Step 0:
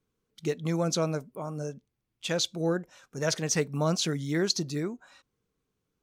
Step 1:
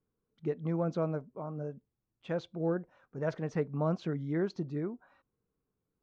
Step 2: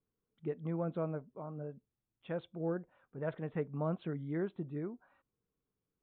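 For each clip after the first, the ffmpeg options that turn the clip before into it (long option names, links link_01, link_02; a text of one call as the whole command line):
ffmpeg -i in.wav -af "lowpass=1300,volume=-3.5dB" out.wav
ffmpeg -i in.wav -af "aresample=8000,aresample=44100,volume=-4.5dB" out.wav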